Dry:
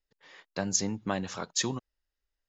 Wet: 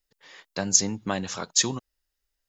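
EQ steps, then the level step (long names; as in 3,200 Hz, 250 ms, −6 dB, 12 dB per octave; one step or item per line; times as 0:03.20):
high-shelf EQ 4,400 Hz +9 dB
+2.5 dB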